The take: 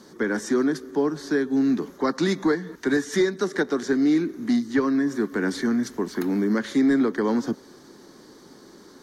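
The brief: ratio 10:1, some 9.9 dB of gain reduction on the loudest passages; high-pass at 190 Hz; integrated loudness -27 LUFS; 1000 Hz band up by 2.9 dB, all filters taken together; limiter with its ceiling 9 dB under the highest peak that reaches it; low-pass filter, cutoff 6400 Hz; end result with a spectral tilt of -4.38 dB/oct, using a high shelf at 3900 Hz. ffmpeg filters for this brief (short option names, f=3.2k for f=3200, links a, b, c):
-af "highpass=190,lowpass=6.4k,equalizer=f=1k:t=o:g=4,highshelf=f=3.9k:g=-6,acompressor=threshold=-27dB:ratio=10,volume=8.5dB,alimiter=limit=-18.5dB:level=0:latency=1"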